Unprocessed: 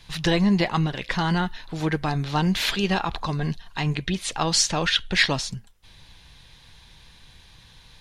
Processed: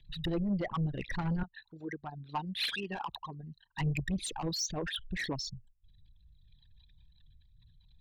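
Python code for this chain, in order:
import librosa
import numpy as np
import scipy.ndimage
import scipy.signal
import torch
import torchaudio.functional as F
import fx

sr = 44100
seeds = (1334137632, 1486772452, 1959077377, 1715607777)

y = fx.envelope_sharpen(x, sr, power=3.0)
y = fx.highpass(y, sr, hz=1000.0, slope=6, at=(1.43, 3.78))
y = fx.rider(y, sr, range_db=4, speed_s=0.5)
y = 10.0 ** (-21.0 / 20.0) * np.tanh(y / 10.0 ** (-21.0 / 20.0))
y = fx.rotary_switch(y, sr, hz=7.5, then_hz=0.7, switch_at_s=4.49)
y = y * librosa.db_to_amplitude(-4.5)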